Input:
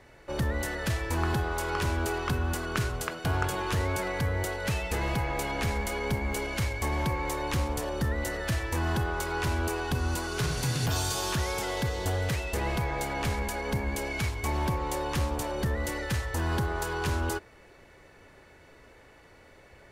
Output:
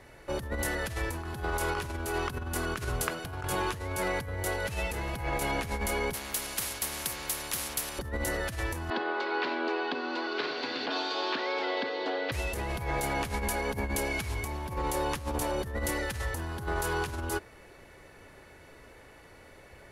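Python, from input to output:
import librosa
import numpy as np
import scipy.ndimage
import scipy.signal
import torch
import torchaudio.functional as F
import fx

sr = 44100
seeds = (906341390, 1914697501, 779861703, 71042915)

y = fx.spectral_comp(x, sr, ratio=4.0, at=(6.13, 7.99))
y = fx.cheby1_bandpass(y, sr, low_hz=260.0, high_hz=4400.0, order=4, at=(8.9, 12.32))
y = fx.peak_eq(y, sr, hz=11000.0, db=9.0, octaves=0.3)
y = fx.over_compress(y, sr, threshold_db=-31.0, ratio=-0.5)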